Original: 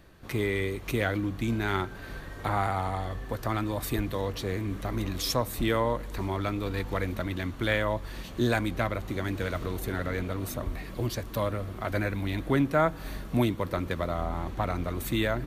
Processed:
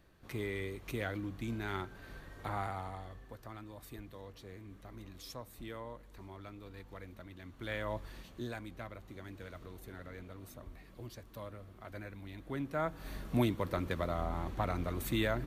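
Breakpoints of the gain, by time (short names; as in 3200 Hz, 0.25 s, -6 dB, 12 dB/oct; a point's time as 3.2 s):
2.62 s -10 dB
3.54 s -19 dB
7.39 s -19 dB
7.98 s -8 dB
8.54 s -17 dB
12.37 s -17 dB
13.26 s -5 dB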